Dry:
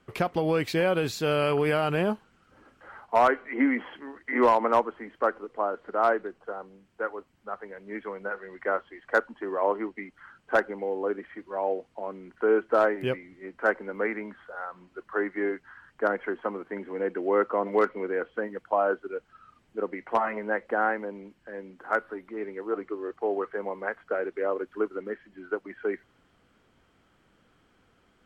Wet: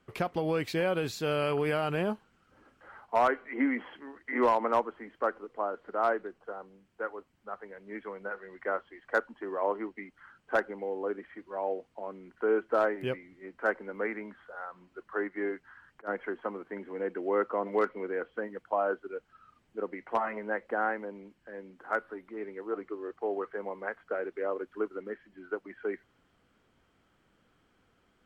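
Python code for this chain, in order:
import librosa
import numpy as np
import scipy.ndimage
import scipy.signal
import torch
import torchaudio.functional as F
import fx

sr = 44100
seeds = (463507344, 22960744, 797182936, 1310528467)

y = fx.auto_swell(x, sr, attack_ms=277.0, at=(15.27, 16.07), fade=0.02)
y = y * 10.0 ** (-4.5 / 20.0)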